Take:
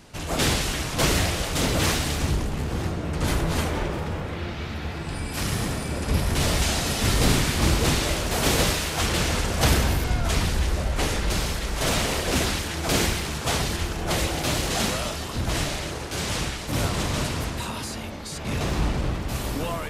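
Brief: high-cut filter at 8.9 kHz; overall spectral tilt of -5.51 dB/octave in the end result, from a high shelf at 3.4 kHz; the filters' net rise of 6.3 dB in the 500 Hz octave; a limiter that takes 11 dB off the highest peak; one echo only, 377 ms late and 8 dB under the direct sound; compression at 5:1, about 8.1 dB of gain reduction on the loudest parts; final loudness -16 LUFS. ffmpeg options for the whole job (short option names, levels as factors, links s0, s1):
-af "lowpass=8900,equalizer=f=500:t=o:g=8,highshelf=f=3400:g=-8.5,acompressor=threshold=0.0631:ratio=5,alimiter=level_in=1.06:limit=0.0631:level=0:latency=1,volume=0.944,aecho=1:1:377:0.398,volume=7.08"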